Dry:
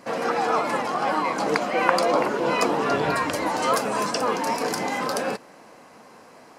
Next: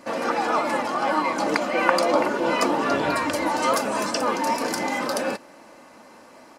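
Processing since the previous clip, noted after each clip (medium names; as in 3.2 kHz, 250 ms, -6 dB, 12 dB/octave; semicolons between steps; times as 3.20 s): comb 3.4 ms, depth 42%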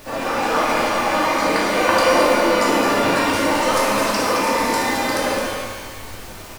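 added noise pink -42 dBFS; delay 217 ms -7 dB; pitch-shifted reverb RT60 1.3 s, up +12 st, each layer -8 dB, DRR -4.5 dB; trim -2 dB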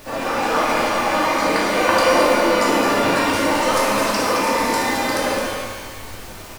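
no audible change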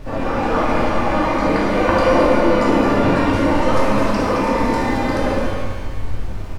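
RIAA curve playback; trim -1 dB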